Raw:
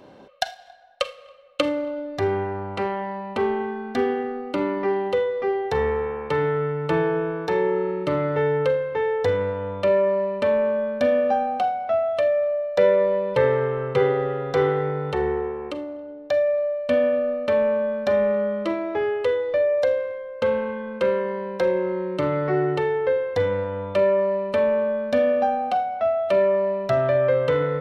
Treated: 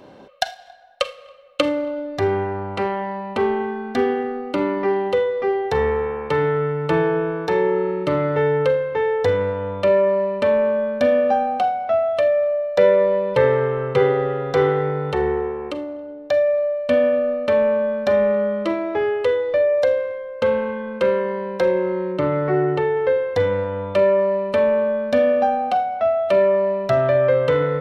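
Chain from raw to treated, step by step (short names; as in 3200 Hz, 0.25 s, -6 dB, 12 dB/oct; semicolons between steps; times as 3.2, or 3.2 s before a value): 22.12–22.97 high shelf 4300 Hz -11.5 dB; gain +3 dB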